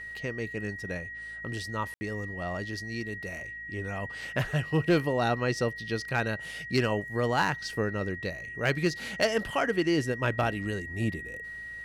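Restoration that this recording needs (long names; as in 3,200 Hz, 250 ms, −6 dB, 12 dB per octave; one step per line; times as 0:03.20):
clipped peaks rebuilt −17 dBFS
hum removal 54.8 Hz, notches 5
notch filter 1,900 Hz, Q 30
ambience match 0:01.94–0:02.01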